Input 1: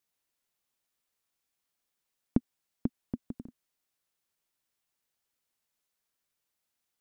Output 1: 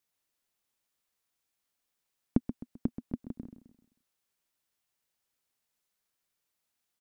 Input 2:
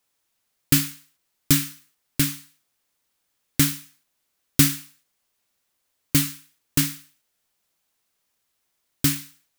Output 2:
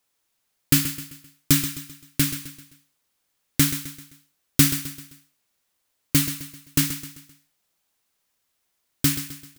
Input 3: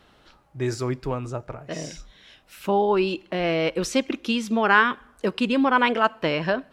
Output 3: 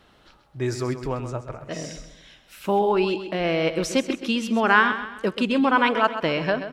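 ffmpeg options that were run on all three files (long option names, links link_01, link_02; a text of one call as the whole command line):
ffmpeg -i in.wav -af "aecho=1:1:130|260|390|520:0.282|0.118|0.0497|0.0209" out.wav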